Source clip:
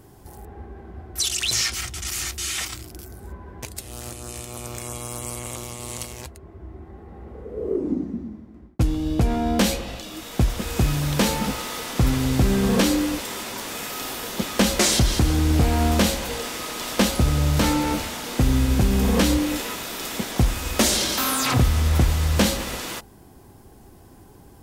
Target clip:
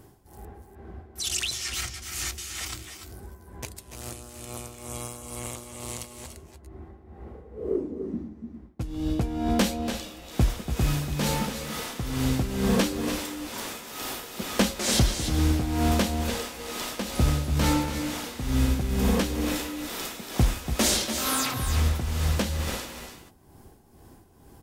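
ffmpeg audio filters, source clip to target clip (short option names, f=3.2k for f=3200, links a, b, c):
-af "tremolo=f=2.2:d=0.77,aecho=1:1:287|300:0.282|0.266,volume=-2dB"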